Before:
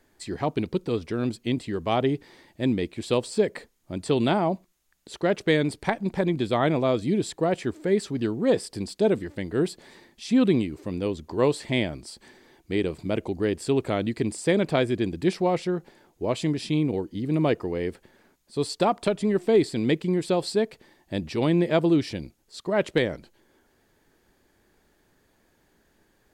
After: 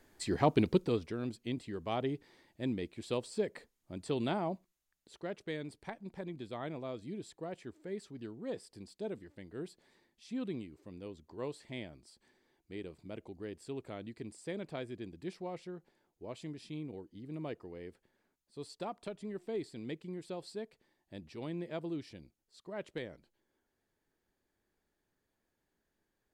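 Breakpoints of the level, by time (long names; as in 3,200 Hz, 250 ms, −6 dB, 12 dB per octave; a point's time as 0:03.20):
0:00.73 −1 dB
0:01.20 −11.5 dB
0:04.54 −11.5 dB
0:05.43 −18.5 dB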